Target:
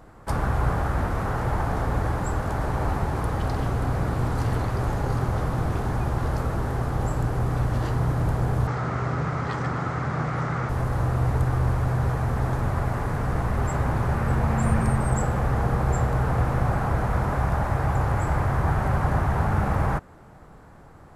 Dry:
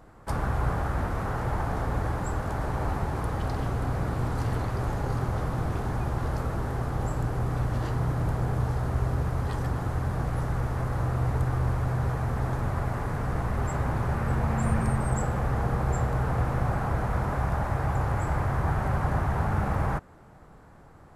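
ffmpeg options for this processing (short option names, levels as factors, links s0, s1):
-filter_complex "[0:a]asettb=1/sr,asplit=3[s0][s1][s2];[s0]atrim=end=8.674[s3];[s1]atrim=start=8.67:end=10.69,asetpts=PTS-STARTPTS,afade=t=in:d=0.004:c=qsin,afade=t=out:st=2.016:d=0.004:c=qsin,highpass=140,equalizer=f=150:t=q:w=4:g=6,equalizer=f=1300:t=q:w=4:g=8,equalizer=f=2100:t=q:w=4:g=7,lowpass=f=7300:w=0.5412,lowpass=f=7300:w=1.3066[s4];[s2]atrim=start=10.686[s5];[s3][s4]acrossfade=d=0.004:c1=hsin:c2=qsin[s6];[s6][s5]acrossfade=d=0.004:c1=qsin:c2=hsin,volume=1.5"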